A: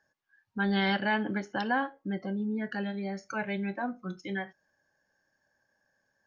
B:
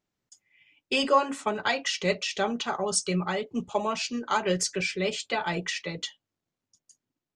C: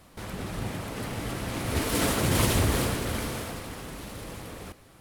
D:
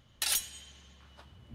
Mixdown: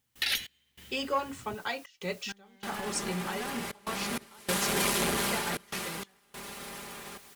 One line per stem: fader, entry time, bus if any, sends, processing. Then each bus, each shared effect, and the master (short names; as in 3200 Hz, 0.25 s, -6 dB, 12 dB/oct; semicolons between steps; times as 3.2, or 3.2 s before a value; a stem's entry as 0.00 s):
-10.5 dB, 1.70 s, no send, hard clip -25 dBFS, distortion -14 dB
-7.5 dB, 0.00 s, no send, requantised 8-bit, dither triangular
-5.5 dB, 2.45 s, no send, spectral limiter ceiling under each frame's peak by 14 dB; HPF 87 Hz 6 dB/oct; comb 5 ms, depth 93%
-2.5 dB, 0.00 s, no send, graphic EQ 125/250/500/1000/2000/4000/8000 Hz +5/+7/+5/-5/+12/+7/-12 dB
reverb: off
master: notch 620 Hz, Q 12; step gate ".xx..xxxxxxx" 97 bpm -24 dB; core saturation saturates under 770 Hz